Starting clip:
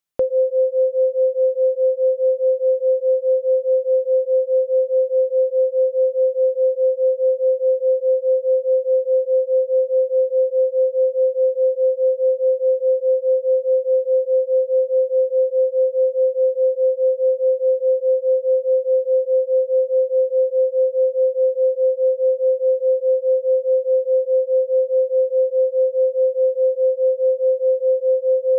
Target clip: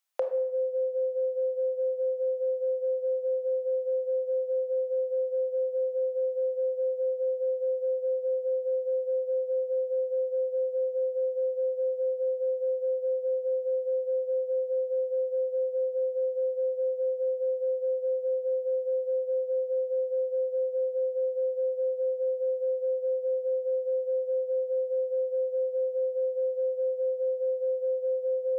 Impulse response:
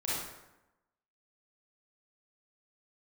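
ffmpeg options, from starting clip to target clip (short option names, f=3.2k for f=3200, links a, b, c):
-filter_complex "[0:a]highpass=f=600:w=0.5412,highpass=f=600:w=1.3066,acompressor=threshold=-27dB:ratio=6,asplit=2[a][b];[1:a]atrim=start_sample=2205,asetrate=57330,aresample=44100[c];[b][c]afir=irnorm=-1:irlink=0,volume=-8dB[d];[a][d]amix=inputs=2:normalize=0"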